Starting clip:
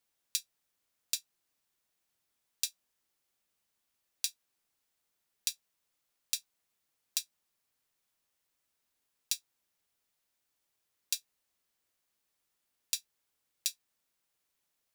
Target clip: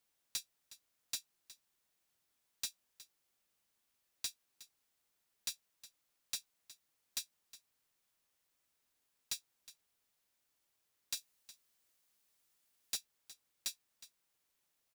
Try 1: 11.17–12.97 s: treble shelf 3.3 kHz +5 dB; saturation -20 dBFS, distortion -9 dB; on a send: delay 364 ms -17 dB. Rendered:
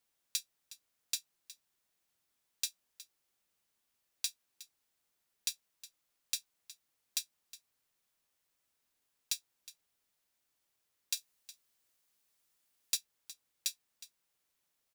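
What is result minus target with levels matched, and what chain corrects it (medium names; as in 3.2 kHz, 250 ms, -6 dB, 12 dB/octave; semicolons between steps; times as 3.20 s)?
saturation: distortion -6 dB
11.17–12.97 s: treble shelf 3.3 kHz +5 dB; saturation -31 dBFS, distortion -4 dB; on a send: delay 364 ms -17 dB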